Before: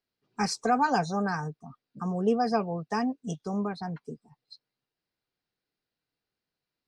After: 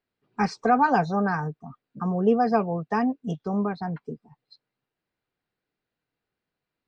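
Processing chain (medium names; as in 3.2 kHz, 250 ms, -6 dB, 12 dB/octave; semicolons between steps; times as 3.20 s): low-pass 2.8 kHz 12 dB/octave; trim +4.5 dB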